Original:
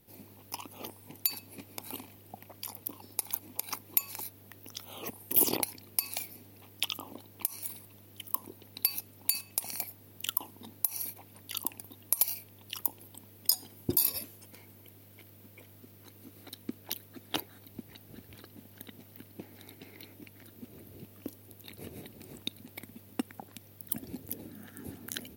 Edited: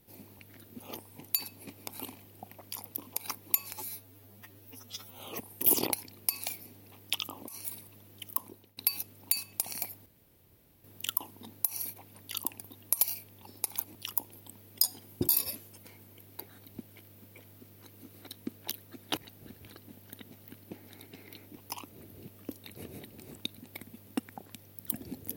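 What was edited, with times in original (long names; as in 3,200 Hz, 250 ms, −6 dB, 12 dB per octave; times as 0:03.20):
0:00.39–0:00.71: swap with 0:20.25–0:20.66
0:02.98–0:03.50: move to 0:12.63
0:04.16–0:04.89: time-stretch 2×
0:07.18–0:07.46: remove
0:08.23–0:08.75: fade out equal-power, to −17 dB
0:10.04: splice in room tone 0.78 s
0:17.39–0:17.85: move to 0:15.07
0:21.41–0:21.66: remove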